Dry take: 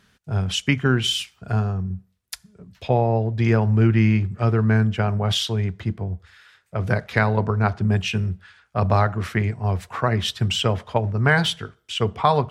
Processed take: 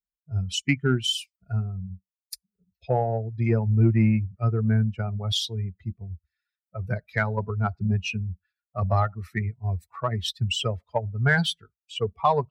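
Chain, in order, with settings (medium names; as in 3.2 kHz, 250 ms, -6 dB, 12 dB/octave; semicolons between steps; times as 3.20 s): expander on every frequency bin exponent 2; in parallel at -9 dB: saturation -18.5 dBFS, distortion -12 dB; on the sum: trim -2 dB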